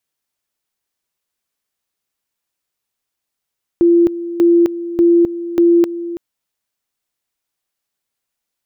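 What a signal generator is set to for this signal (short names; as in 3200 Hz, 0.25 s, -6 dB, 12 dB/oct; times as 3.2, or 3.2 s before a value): two-level tone 342 Hz -7 dBFS, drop 14 dB, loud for 0.26 s, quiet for 0.33 s, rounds 4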